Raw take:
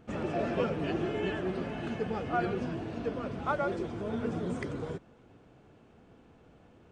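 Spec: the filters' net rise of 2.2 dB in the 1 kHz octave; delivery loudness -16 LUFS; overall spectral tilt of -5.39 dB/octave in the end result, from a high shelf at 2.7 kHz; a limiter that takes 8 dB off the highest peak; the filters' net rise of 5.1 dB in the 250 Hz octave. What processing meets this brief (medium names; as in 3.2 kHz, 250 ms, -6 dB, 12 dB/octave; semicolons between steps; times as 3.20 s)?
peaking EQ 250 Hz +6.5 dB; peaking EQ 1 kHz +4 dB; treble shelf 2.7 kHz -7.5 dB; trim +16 dB; peak limiter -6.5 dBFS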